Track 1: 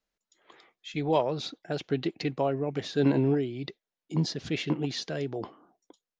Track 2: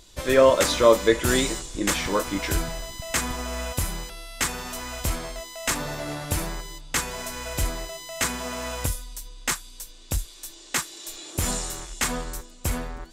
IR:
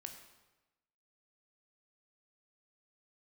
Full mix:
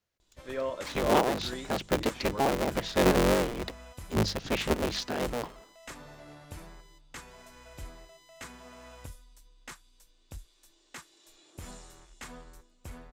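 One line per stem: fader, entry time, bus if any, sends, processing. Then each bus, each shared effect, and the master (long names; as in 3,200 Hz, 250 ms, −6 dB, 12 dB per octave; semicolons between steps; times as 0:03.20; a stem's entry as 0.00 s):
+1.0 dB, 0.00 s, no send, sub-harmonics by changed cycles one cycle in 3, inverted; mains-hum notches 50/100/150/200 Hz
−17.0 dB, 0.20 s, no send, high-shelf EQ 5,500 Hz −9 dB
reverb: not used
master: no processing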